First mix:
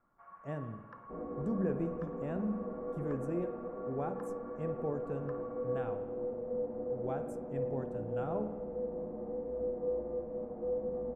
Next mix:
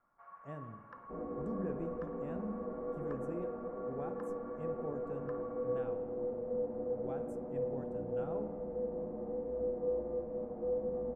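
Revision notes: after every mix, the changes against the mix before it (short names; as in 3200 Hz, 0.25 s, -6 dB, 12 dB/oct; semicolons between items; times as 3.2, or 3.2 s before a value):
speech -6.5 dB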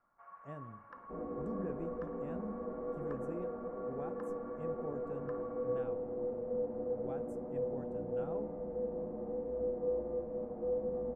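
speech: send -9.0 dB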